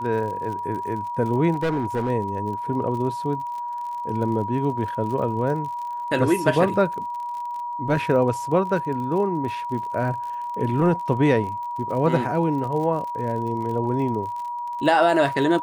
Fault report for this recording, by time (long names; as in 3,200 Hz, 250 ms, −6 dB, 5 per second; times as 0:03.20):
surface crackle 49 per second −32 dBFS
whistle 960 Hz −27 dBFS
0:01.53–0:02.10: clipping −19.5 dBFS